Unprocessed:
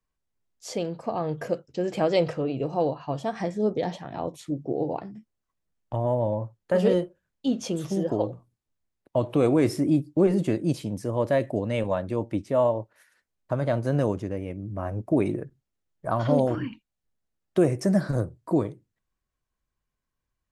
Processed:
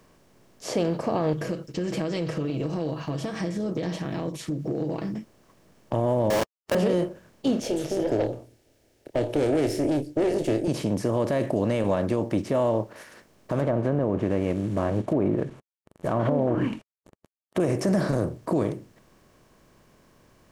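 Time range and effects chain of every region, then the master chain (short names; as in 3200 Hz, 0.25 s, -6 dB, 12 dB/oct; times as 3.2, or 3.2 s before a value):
1.33–5.14 comb 6.2 ms, depth 75% + compressor 2.5:1, threshold -33 dBFS + bell 730 Hz -13 dB 1.6 oct
6.3–6.75 HPF 590 Hz + companded quantiser 2-bit
7.6–10.68 tube stage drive 21 dB, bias 0.55 + fixed phaser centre 450 Hz, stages 4 + doubler 27 ms -13 dB
13.59–17.6 CVSD 64 kbps + treble ducked by the level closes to 930 Hz, closed at -20 dBFS + bell 5100 Hz -12 dB 0.52 oct
whole clip: per-bin compression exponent 0.6; limiter -14.5 dBFS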